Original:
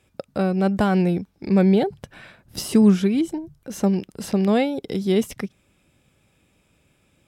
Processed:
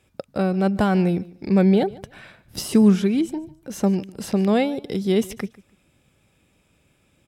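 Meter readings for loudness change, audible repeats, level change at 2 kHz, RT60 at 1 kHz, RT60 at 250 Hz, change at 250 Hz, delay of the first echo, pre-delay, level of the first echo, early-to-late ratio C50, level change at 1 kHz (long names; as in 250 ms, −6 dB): 0.0 dB, 2, 0.0 dB, no reverb audible, no reverb audible, 0.0 dB, 147 ms, no reverb audible, −21.0 dB, no reverb audible, 0.0 dB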